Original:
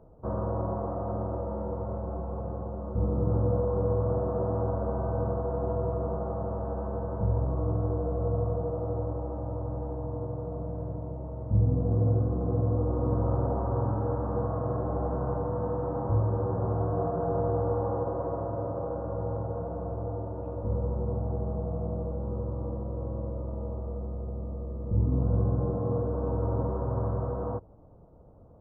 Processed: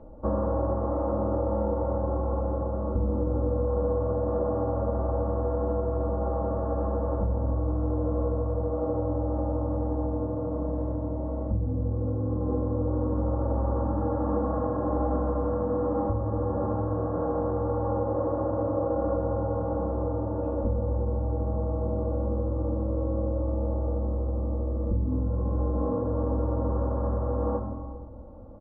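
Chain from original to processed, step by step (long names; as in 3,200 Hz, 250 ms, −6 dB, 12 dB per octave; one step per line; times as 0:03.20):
on a send at −9.5 dB: convolution reverb RT60 1.4 s, pre-delay 46 ms
on the sum: downward compressor, threshold −30 dBFS, peak gain reduction 11.5 dB
high-frequency loss of the air 200 metres
comb filter 3.6 ms, depth 88%
level +6 dB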